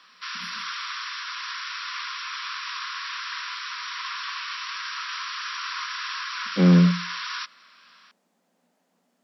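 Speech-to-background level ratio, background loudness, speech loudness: 12.5 dB, −31.0 LKFS, −18.5 LKFS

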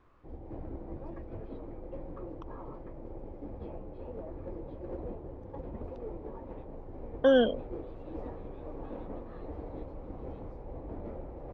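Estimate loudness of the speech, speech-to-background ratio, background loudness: −26.5 LKFS, 17.5 dB, −44.0 LKFS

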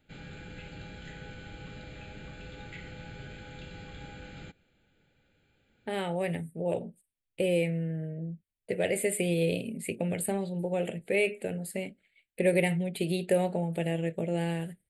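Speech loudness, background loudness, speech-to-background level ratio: −31.0 LKFS, −45.5 LKFS, 14.5 dB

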